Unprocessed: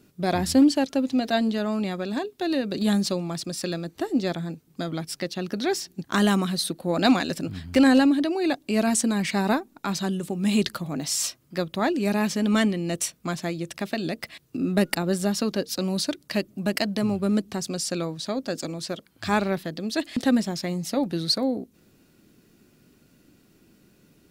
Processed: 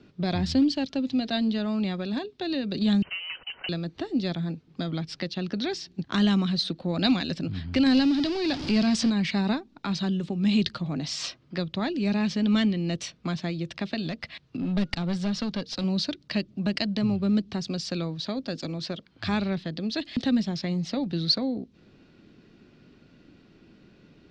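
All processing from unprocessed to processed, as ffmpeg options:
-filter_complex "[0:a]asettb=1/sr,asplit=3[s0][s1][s2];[s0]atrim=end=3.024[s3];[s1]atrim=start=3.02:end=3.69,asetpts=PTS-STARTPTS,afade=t=in:d=0.004:c=qsin,afade=t=out:st=0.666:d=0.004:c=qsin,asoftclip=type=hard:threshold=0.0398,highpass=f=330:w=0.5412,highpass=f=330:w=1.3066,lowpass=f=2800:t=q:w=0.5098,lowpass=f=2800:t=q:w=0.6013,lowpass=f=2800:t=q:w=0.9,lowpass=f=2800:t=q:w=2.563,afreqshift=-3300[s4];[s2]atrim=start=3.686[s5];[s3][s4]acrossfade=d=0.004:c1=hsin:c2=qsin[s6];[s6][s5]acrossfade=d=0.004:c1=qsin:c2=hsin,asettb=1/sr,asplit=3[s7][s8][s9];[s7]atrim=end=7.864[s10];[s8]atrim=start=7.86:end=9.1,asetpts=PTS-STARTPTS,afade=t=in:d=0.004:c=qsin,afade=t=out:st=1.236:d=0.004:c=qsin,aeval=exprs='val(0)+0.5*0.0562*sgn(val(0))':c=same,equalizer=f=5000:t=o:w=0.24:g=8.5[s11];[s9]atrim=start=9.096[s12];[s10][s11]acrossfade=d=0.004:c1=hsin:c2=qsin[s13];[s13][s12]acrossfade=d=0.004:c1=qsin:c2=hsin,asettb=1/sr,asplit=3[s14][s15][s16];[s14]atrim=end=14.024[s17];[s15]atrim=start=14.02:end=15.84,asetpts=PTS-STARTPTS,afade=t=in:d=0.004:c=qsin,afade=t=out:st=1.816:d=0.004:c=qsin,equalizer=f=360:t=o:w=0.99:g=-6,aeval=exprs='clip(val(0),-1,0.0531)':c=same[s18];[s16]atrim=start=15.836[s19];[s17][s18]acrossfade=d=0.004:c1=hsin:c2=qsin[s20];[s20][s19]acrossfade=d=0.004:c1=qsin:c2=hsin,lowpass=f=4500:w=0.5412,lowpass=f=4500:w=1.3066,acrossover=split=210|3000[s21][s22][s23];[s22]acompressor=threshold=0.00708:ratio=2[s24];[s21][s24][s23]amix=inputs=3:normalize=0,volume=1.5"

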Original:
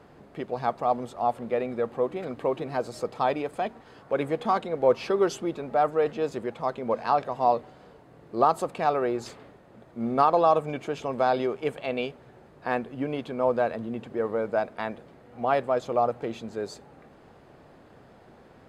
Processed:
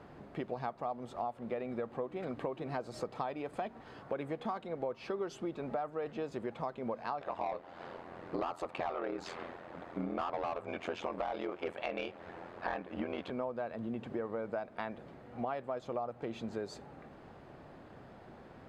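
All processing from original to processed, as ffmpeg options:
-filter_complex "[0:a]asettb=1/sr,asplit=3[s0][s1][s2];[s0]atrim=end=7.214[s3];[s1]atrim=start=7.21:end=13.3,asetpts=PTS-STARTPTS,afade=t=in:d=0.004:c=qsin,afade=t=out:st=6.086:d=0.004:c=qsin,asplit=2[s4][s5];[s5]highpass=f=720:p=1,volume=8.91,asoftclip=type=tanh:threshold=0.422[s6];[s4][s6]amix=inputs=2:normalize=0,lowpass=f=3100:p=1,volume=0.501,aeval=exprs='val(0)*sin(2*PI*43*n/s)':c=same[s7];[s2]atrim=start=13.296[s8];[s3][s7]acrossfade=d=0.004:c1=hsin:c2=qsin[s9];[s9][s8]acrossfade=d=0.004:c1=qsin:c2=hsin,lowpass=f=3900:p=1,equalizer=f=460:w=4.2:g=-3,acompressor=threshold=0.02:ratio=10"

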